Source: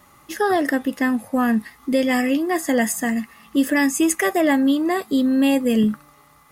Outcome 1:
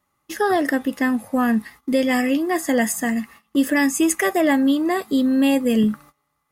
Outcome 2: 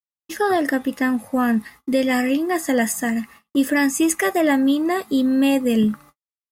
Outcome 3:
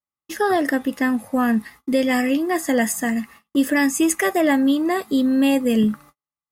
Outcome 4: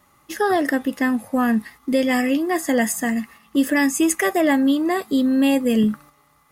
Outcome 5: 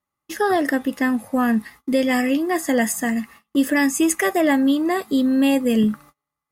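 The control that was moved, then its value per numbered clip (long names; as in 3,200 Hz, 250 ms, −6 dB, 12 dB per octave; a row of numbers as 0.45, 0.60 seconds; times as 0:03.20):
noise gate, range: −20, −60, −46, −6, −32 decibels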